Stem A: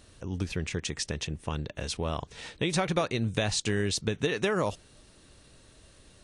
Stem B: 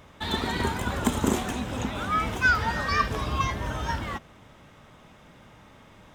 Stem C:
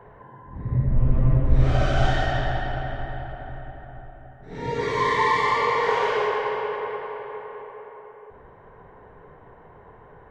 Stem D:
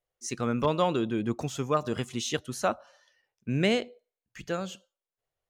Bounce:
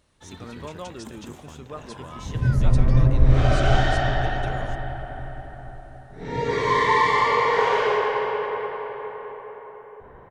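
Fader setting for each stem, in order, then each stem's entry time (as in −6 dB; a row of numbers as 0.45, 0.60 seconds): −12.0, −18.5, +2.0, −11.5 decibels; 0.00, 0.00, 1.70, 0.00 seconds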